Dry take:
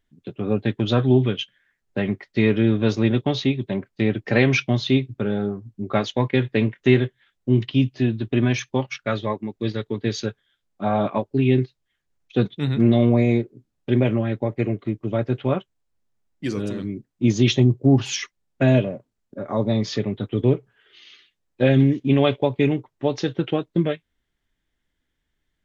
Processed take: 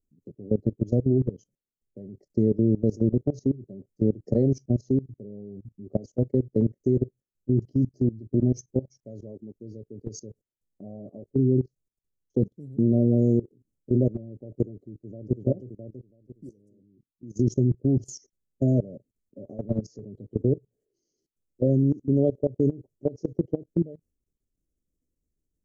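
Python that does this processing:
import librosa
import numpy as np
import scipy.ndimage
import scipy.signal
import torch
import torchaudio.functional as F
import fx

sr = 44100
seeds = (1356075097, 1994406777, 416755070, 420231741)

y = fx.echo_throw(x, sr, start_s=14.89, length_s=0.48, ms=330, feedback_pct=45, wet_db=-6.0)
y = fx.level_steps(y, sr, step_db=21, at=(16.49, 17.37))
y = scipy.signal.sosfilt(scipy.signal.cheby2(4, 40, [930.0, 3800.0], 'bandstop', fs=sr, output='sos'), y)
y = fx.level_steps(y, sr, step_db=20)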